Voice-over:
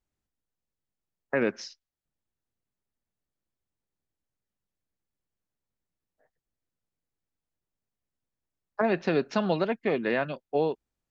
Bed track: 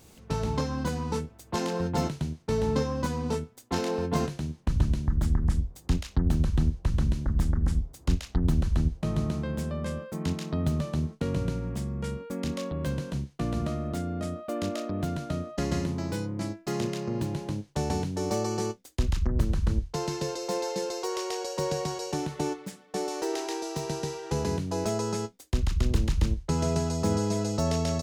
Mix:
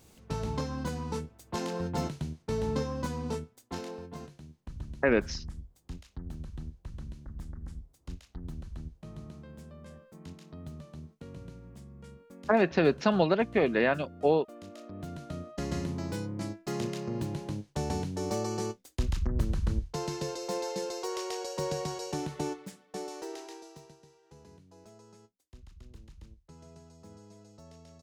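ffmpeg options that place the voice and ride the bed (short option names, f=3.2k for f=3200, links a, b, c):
-filter_complex "[0:a]adelay=3700,volume=1.5dB[a];[1:a]volume=8.5dB,afade=t=out:st=3.3:d=0.81:silence=0.251189,afade=t=in:st=14.67:d=1.3:silence=0.223872,afade=t=out:st=22.37:d=1.6:silence=0.0749894[b];[a][b]amix=inputs=2:normalize=0"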